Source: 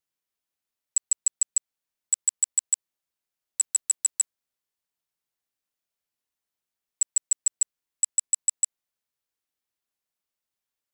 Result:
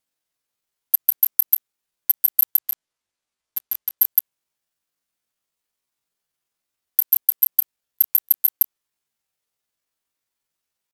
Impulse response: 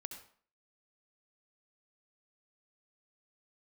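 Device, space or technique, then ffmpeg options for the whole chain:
chipmunk voice: -filter_complex "[0:a]asplit=3[s0][s1][s2];[s0]afade=t=out:st=2.59:d=0.02[s3];[s1]lowpass=5100,afade=t=in:st=2.59:d=0.02,afade=t=out:st=3.99:d=0.02[s4];[s2]afade=t=in:st=3.99:d=0.02[s5];[s3][s4][s5]amix=inputs=3:normalize=0,asetrate=72056,aresample=44100,atempo=0.612027,volume=2.66"

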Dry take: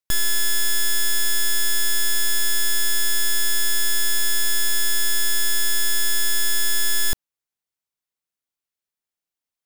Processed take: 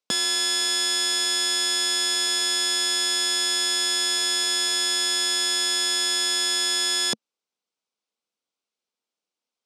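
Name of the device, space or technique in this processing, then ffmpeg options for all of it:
television speaker: -af "highpass=f=190:w=0.5412,highpass=f=190:w=1.3066,equalizer=f=220:t=q:w=4:g=3,equalizer=f=480:t=q:w=4:g=5,equalizer=f=1800:t=q:w=4:g=-9,equalizer=f=7100:t=q:w=4:g=-4,lowpass=f=7800:w=0.5412,lowpass=f=7800:w=1.3066,volume=1.78"

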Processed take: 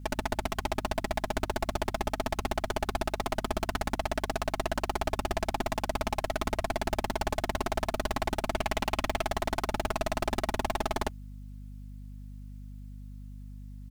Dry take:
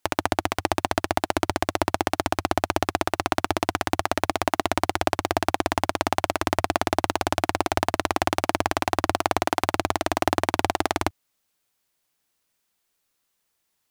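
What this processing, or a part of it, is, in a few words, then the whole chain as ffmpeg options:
valve amplifier with mains hum: -filter_complex "[0:a]aecho=1:1:4.7:0.57,aeval=exprs='(tanh(28.2*val(0)+0.65)-tanh(0.65))/28.2':c=same,aeval=exprs='val(0)+0.00447*(sin(2*PI*50*n/s)+sin(2*PI*2*50*n/s)/2+sin(2*PI*3*50*n/s)/3+sin(2*PI*4*50*n/s)/4+sin(2*PI*5*50*n/s)/5)':c=same,asettb=1/sr,asplit=3[s0][s1][s2];[s0]atrim=end=8.524[s3];[s1]atrim=start=8.52:end=9.25,asetpts=PTS-STARTPTS,afade=t=in:d=0.004:c=qsin,afade=t=out:st=0.726:d=0.004:c=qsin,equalizer=f=2600:w=1.5:g=5.5[s4];[s2]atrim=start=9.246[s5];[s3][s4]acrossfade=d=0.004:c1=hsin:c2=qsin[s6];[s6][s5]acrossfade=d=0.004:c1=qsin:c2=hsin,volume=1.78"

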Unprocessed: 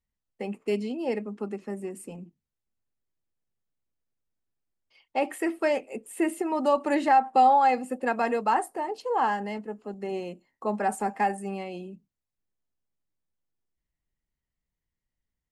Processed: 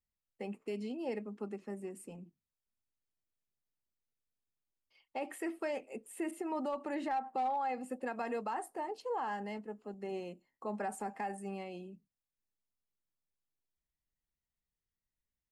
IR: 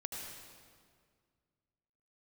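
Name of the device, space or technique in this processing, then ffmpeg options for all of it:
clipper into limiter: -filter_complex "[0:a]asoftclip=type=hard:threshold=0.2,alimiter=limit=0.0891:level=0:latency=1:release=80,asettb=1/sr,asplit=3[s0][s1][s2];[s0]atrim=end=6.314[s3];[s1]atrim=start=6.31:end=7.81,asetpts=PTS-STARTPTS,afade=t=in:d=0.004:c=qsin,afade=t=out:st=1.496:d=0.004:c=qsin,adynamicequalizer=threshold=0.00398:dfrequency=3400:dqfactor=0.7:tfrequency=3400:tqfactor=0.7:attack=5:release=100:ratio=0.375:range=3:mode=cutabove:tftype=highshelf[s4];[s2]atrim=start=7.806[s5];[s3][s4]acrossfade=d=0.004:c1=hsin:c2=qsin[s6];[s6][s5]acrossfade=d=0.004:c1=qsin:c2=hsin,volume=0.398"

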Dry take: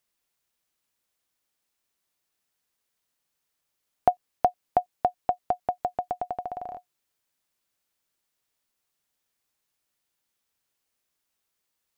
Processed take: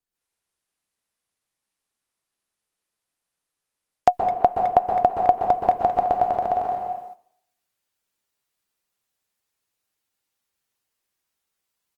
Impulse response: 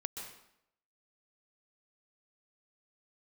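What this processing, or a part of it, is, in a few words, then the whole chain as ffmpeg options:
speakerphone in a meeting room: -filter_complex "[1:a]atrim=start_sample=2205[s0];[0:a][s0]afir=irnorm=-1:irlink=0,asplit=2[s1][s2];[s2]adelay=210,highpass=300,lowpass=3400,asoftclip=type=hard:threshold=0.141,volume=0.282[s3];[s1][s3]amix=inputs=2:normalize=0,dynaudnorm=f=110:g=3:m=4.22,agate=range=0.282:threshold=0.0141:ratio=16:detection=peak,volume=0.891" -ar 48000 -c:a libopus -b:a 32k

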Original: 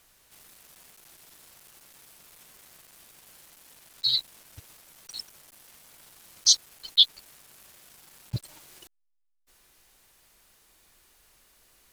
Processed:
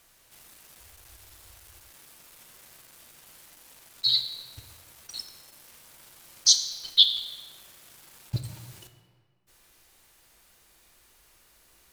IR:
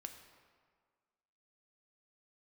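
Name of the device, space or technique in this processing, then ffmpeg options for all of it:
stairwell: -filter_complex "[1:a]atrim=start_sample=2205[s0];[0:a][s0]afir=irnorm=-1:irlink=0,asettb=1/sr,asplit=3[s1][s2][s3];[s1]atrim=end=0.804[s4];[s2]atrim=start=0.8:end=1.9,asetpts=PTS-STARTPTS,afade=t=in:d=0.004:c=qsin,afade=t=out:st=1.096:d=0.004:c=qsin,lowshelf=f=120:t=q:w=3:g=11.5[s5];[s3]atrim=start=1.896[s6];[s4][s5]acrossfade=d=0.004:c1=hsin:c2=qsin[s7];[s7][s6]acrossfade=d=0.004:c1=qsin:c2=hsin,volume=2"

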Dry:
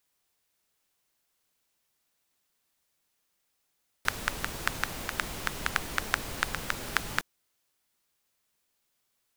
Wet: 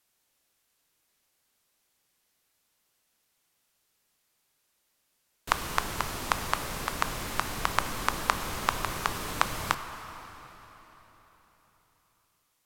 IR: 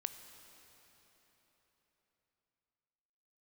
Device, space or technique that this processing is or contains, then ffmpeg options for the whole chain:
slowed and reverbed: -filter_complex "[0:a]asetrate=32634,aresample=44100[s0];[1:a]atrim=start_sample=2205[s1];[s0][s1]afir=irnorm=-1:irlink=0,volume=1.58"

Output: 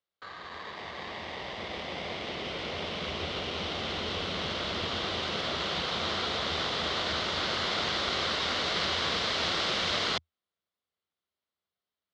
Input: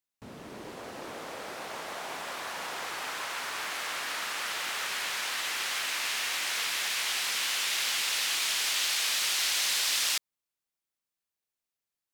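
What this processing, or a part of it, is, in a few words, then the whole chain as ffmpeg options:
ring modulator pedal into a guitar cabinet: -af "aeval=exprs='val(0)*sgn(sin(2*PI*1400*n/s))':c=same,highpass=80,equalizer=f=82:t=q:w=4:g=7,equalizer=f=120:t=q:w=4:g=-9,equalizer=f=280:t=q:w=4:g=-6,equalizer=f=880:t=q:w=4:g=-6,equalizer=f=1700:t=q:w=4:g=-6,equalizer=f=2500:t=q:w=4:g=-9,lowpass=f=3800:w=0.5412,lowpass=f=3800:w=1.3066,volume=2"

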